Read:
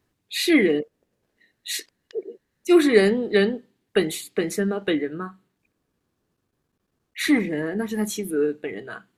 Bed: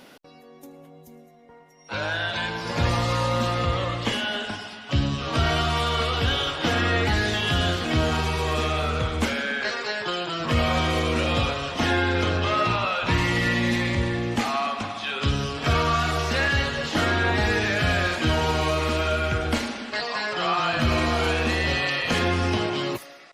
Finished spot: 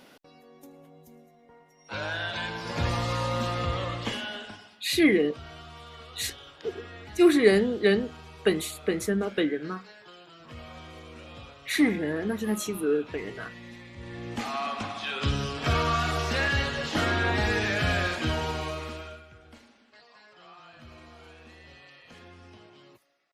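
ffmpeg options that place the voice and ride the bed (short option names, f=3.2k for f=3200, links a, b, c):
-filter_complex "[0:a]adelay=4500,volume=-3dB[a];[1:a]volume=13.5dB,afade=t=out:st=3.96:d=0.9:silence=0.141254,afade=t=in:st=13.95:d=0.88:silence=0.11885,afade=t=out:st=17.98:d=1.27:silence=0.0668344[b];[a][b]amix=inputs=2:normalize=0"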